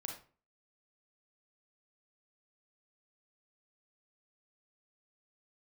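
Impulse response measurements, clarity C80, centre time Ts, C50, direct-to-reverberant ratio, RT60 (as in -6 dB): 11.0 dB, 26 ms, 5.0 dB, 1.0 dB, 0.40 s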